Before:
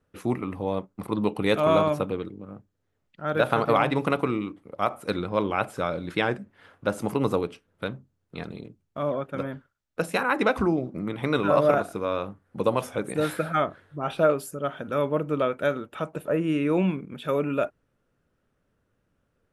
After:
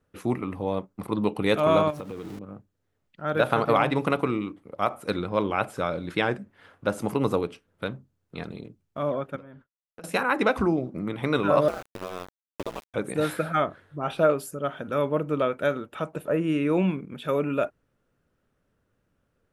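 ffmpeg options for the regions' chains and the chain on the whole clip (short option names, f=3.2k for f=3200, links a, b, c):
-filter_complex "[0:a]asettb=1/sr,asplit=3[a][b][c];[a]atrim=end=1.904[d];[b]atrim=start=1.9:end=2.39,asetpts=PTS-STARTPTS,afade=t=in:d=0.004:c=qsin,afade=t=out:st=0.486:d=0.004:c=qsin,aeval=exprs='val(0)+0.5*0.0133*sgn(val(0))':c=same,acompressor=threshold=-32dB:ratio=6:attack=3.2:release=140:knee=1:detection=peak[e];[c]atrim=start=2.386[f];[d][e]acrossfade=d=0.004:c1=hsin:c2=qsin[g];[g][f]acrossfade=d=0.004:c1=qsin:c2=hsin,asettb=1/sr,asplit=3[h][i][j];[h]atrim=end=9.364[k];[i]atrim=start=9.36:end=10.04,asetpts=PTS-STARTPTS,afade=t=in:d=0.004:c=qsin,afade=t=out:st=0.676:d=0.004:c=qsin,agate=range=-33dB:threshold=-51dB:ratio=3:release=100:detection=peak,highshelf=f=5k:g=-9.5,acompressor=threshold=-42dB:ratio=8:attack=3.2:release=140:knee=1:detection=peak[l];[j]atrim=start=10.036[m];[k][l]acrossfade=d=0.004:c1=hsin:c2=qsin[n];[n][m]acrossfade=d=0.004:c1=qsin:c2=hsin,asettb=1/sr,asplit=3[o][p][q];[o]atrim=end=11.684[r];[p]atrim=start=11.68:end=12.94,asetpts=PTS-STARTPTS,afade=t=in:d=0.004:c=qsin,afade=t=out:st=1.256:d=0.004:c=qsin,aeval=exprs='val(0)*gte(abs(val(0)),0.0398)':c=same,acrossover=split=1400|3900[s][t][u];[s]acompressor=threshold=-30dB:ratio=4[v];[t]acompressor=threshold=-42dB:ratio=4[w];[u]acompressor=threshold=-49dB:ratio=4[x];[v][w][x]amix=inputs=3:normalize=0,aeval=exprs='val(0)*sin(2*PI*89*n/s)':c=same[y];[q]atrim=start=12.936[z];[r][y]acrossfade=d=0.004:c1=hsin:c2=qsin[aa];[aa][z]acrossfade=d=0.004:c1=qsin:c2=hsin"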